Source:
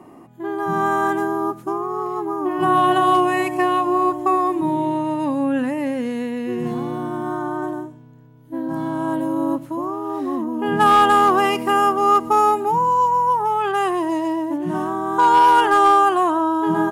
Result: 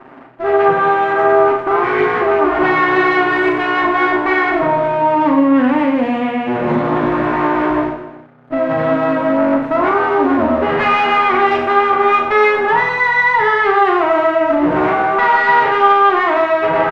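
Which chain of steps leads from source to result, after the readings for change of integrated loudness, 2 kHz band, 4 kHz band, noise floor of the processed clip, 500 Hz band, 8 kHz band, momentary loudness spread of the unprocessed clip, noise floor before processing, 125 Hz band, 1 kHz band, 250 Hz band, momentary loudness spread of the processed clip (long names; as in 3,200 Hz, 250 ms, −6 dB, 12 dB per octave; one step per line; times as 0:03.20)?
+5.0 dB, +12.0 dB, +3.5 dB, −32 dBFS, +8.5 dB, below −10 dB, 12 LU, −44 dBFS, +4.0 dB, +3.0 dB, +5.0 dB, 5 LU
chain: lower of the sound and its delayed copy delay 7.6 ms
leveller curve on the samples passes 2
low-shelf EQ 130 Hz −10 dB
speech leveller
brickwall limiter −11 dBFS, peak gain reduction 6 dB
Chebyshev low-pass filter 2,000 Hz, order 2
low-shelf EQ 62 Hz −9.5 dB
reverse bouncing-ball delay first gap 40 ms, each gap 1.3×, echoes 5
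level +3 dB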